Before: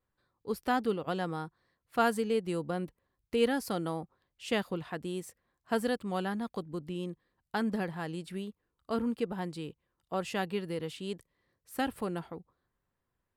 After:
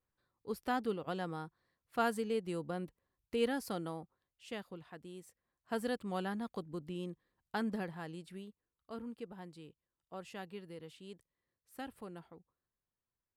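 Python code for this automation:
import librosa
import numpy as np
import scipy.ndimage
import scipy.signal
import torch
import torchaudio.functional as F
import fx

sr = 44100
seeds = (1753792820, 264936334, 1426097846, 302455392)

y = fx.gain(x, sr, db=fx.line((3.72, -5.5), (4.57, -13.0), (5.17, -13.0), (5.98, -4.5), (7.59, -4.5), (8.94, -13.0)))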